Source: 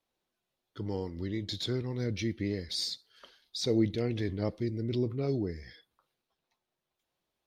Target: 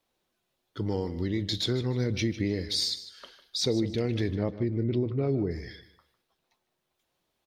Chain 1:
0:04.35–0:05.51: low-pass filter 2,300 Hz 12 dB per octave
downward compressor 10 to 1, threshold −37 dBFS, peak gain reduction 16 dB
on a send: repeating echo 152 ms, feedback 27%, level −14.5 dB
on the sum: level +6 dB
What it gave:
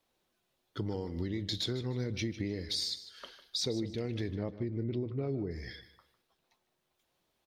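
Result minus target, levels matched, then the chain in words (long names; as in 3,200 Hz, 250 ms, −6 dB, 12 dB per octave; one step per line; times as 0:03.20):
downward compressor: peak gain reduction +7.5 dB
0:04.35–0:05.51: low-pass filter 2,300 Hz 12 dB per octave
downward compressor 10 to 1, threshold −28.5 dBFS, peak gain reduction 8.5 dB
on a send: repeating echo 152 ms, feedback 27%, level −14.5 dB
on the sum: level +6 dB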